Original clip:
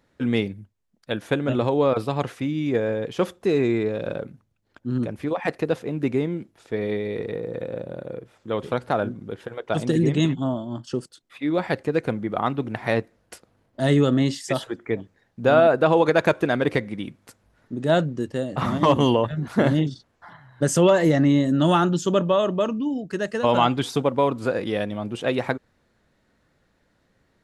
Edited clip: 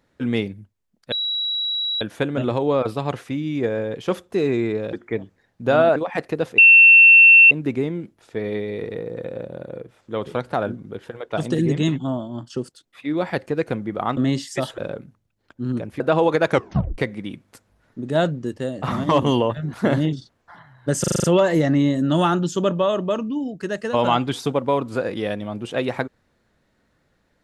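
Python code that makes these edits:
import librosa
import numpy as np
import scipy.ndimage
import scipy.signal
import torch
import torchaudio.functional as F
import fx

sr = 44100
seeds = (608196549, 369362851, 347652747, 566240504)

y = fx.edit(x, sr, fx.insert_tone(at_s=1.12, length_s=0.89, hz=3890.0, db=-21.0),
    fx.swap(start_s=4.04, length_s=1.22, other_s=14.71, other_length_s=1.03),
    fx.insert_tone(at_s=5.88, length_s=0.93, hz=2700.0, db=-6.0),
    fx.cut(start_s=12.54, length_s=1.56),
    fx.tape_stop(start_s=16.24, length_s=0.48),
    fx.stutter(start_s=20.74, slice_s=0.04, count=7), tone=tone)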